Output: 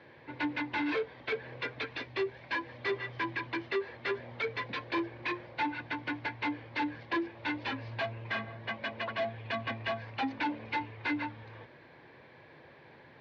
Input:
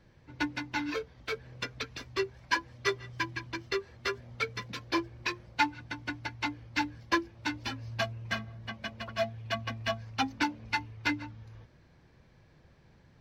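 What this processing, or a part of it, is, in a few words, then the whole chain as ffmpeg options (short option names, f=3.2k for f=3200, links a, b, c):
overdrive pedal into a guitar cabinet: -filter_complex "[0:a]asettb=1/sr,asplit=3[a][b][c];[a]atrim=end=1.994[d];[b]atrim=start=1.99:end=2.69,asetpts=PTS-STARTPTS,afade=t=in:d=0.004:c=qsin,afade=t=out:st=0.696:d=0.004:c=qsin,equalizer=f=1.1k:t=o:w=1.3:g=-4.5[e];[c]atrim=start=2.686[f];[d][e]acrossfade=d=0.004:c1=hsin:c2=qsin[g];[g][f]acrossfade=d=0.004:c1=qsin:c2=hsin,asplit=2[h][i];[i]highpass=f=720:p=1,volume=31dB,asoftclip=type=tanh:threshold=-12.5dB[j];[h][j]amix=inputs=2:normalize=0,lowpass=f=2.5k:p=1,volume=-6dB,highpass=100,equalizer=f=190:t=q:w=4:g=-9,equalizer=f=710:t=q:w=4:g=-3,equalizer=f=1.3k:t=q:w=4:g=-8,equalizer=f=2.9k:t=q:w=4:g=-4,lowpass=f=3.7k:w=0.5412,lowpass=f=3.7k:w=1.3066,volume=-8.5dB"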